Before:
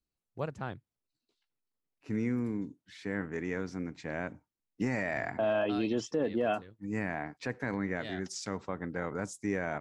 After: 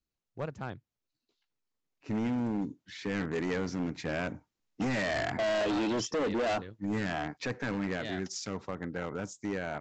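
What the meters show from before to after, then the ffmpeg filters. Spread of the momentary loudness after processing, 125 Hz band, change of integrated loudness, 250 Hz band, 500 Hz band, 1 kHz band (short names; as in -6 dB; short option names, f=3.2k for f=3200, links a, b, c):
10 LU, +1.0 dB, +1.0 dB, +1.0 dB, +0.5 dB, +2.0 dB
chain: -af "dynaudnorm=f=230:g=21:m=7.5dB,aresample=16000,asoftclip=type=hard:threshold=-27.5dB,aresample=44100"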